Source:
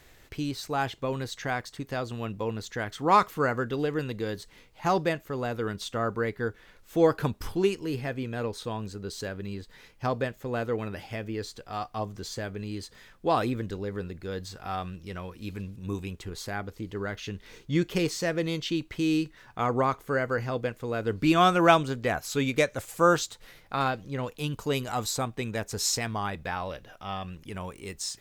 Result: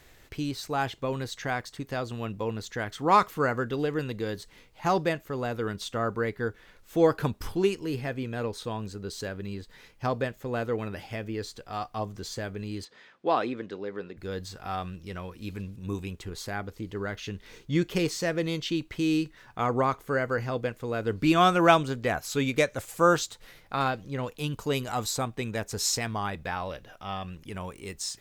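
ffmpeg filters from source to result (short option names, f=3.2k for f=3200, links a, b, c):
-filter_complex "[0:a]asplit=3[a][b][c];[a]afade=t=out:st=12.84:d=0.02[d];[b]highpass=260,lowpass=4.1k,afade=t=in:st=12.84:d=0.02,afade=t=out:st=14.16:d=0.02[e];[c]afade=t=in:st=14.16:d=0.02[f];[d][e][f]amix=inputs=3:normalize=0"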